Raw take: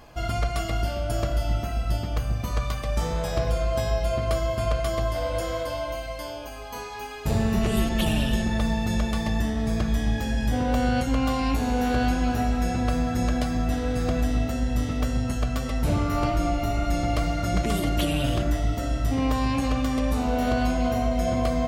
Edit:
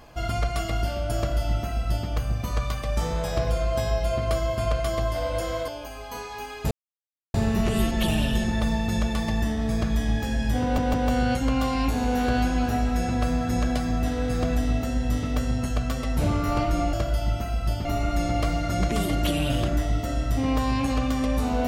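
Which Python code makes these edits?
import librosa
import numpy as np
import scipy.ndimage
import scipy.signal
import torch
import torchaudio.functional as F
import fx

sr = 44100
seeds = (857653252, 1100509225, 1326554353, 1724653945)

y = fx.edit(x, sr, fx.duplicate(start_s=1.16, length_s=0.92, to_s=16.59),
    fx.cut(start_s=5.68, length_s=0.61),
    fx.insert_silence(at_s=7.32, length_s=0.63),
    fx.stutter(start_s=10.6, slice_s=0.16, count=3), tone=tone)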